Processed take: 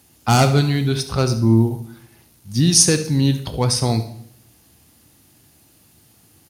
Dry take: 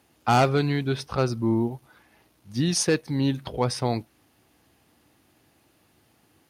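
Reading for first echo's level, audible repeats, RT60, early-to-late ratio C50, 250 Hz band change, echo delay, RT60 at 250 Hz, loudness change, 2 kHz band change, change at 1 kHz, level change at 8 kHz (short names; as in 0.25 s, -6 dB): -14.5 dB, 1, 0.75 s, 10.5 dB, +6.5 dB, 71 ms, 0.85 s, +7.5 dB, +3.5 dB, +2.5 dB, +13.5 dB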